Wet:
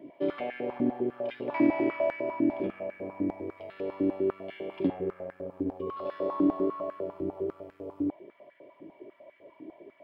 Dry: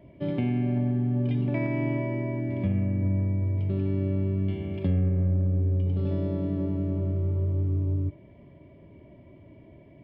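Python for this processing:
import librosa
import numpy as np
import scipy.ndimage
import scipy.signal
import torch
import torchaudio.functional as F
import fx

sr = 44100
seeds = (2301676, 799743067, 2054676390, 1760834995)

y = fx.diode_clip(x, sr, knee_db=-21.0)
y = fx.notch(y, sr, hz=2000.0, q=10.0, at=(1.94, 3.2))
y = fx.dmg_tone(y, sr, hz=1100.0, level_db=-44.0, at=(5.81, 6.99), fade=0.02)
y = fx.filter_held_highpass(y, sr, hz=10.0, low_hz=300.0, high_hz=1600.0)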